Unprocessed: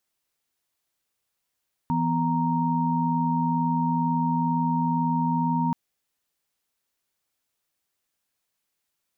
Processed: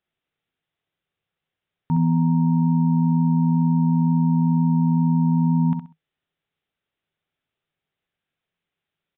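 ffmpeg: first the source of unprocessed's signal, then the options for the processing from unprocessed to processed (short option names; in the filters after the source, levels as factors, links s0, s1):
-f lavfi -i "aevalsrc='0.0531*(sin(2*PI*164.81*t)+sin(2*PI*246.94*t)+sin(2*PI*932.33*t))':d=3.83:s=44100"
-filter_complex "[0:a]equalizer=f=100:t=o:w=0.33:g=7,equalizer=f=160:t=o:w=0.33:g=10,equalizer=f=400:t=o:w=0.33:g=4,equalizer=f=1000:t=o:w=0.33:g=-5,asplit=2[s0][s1];[s1]aecho=0:1:65|130|195:0.447|0.112|0.0279[s2];[s0][s2]amix=inputs=2:normalize=0,aresample=8000,aresample=44100"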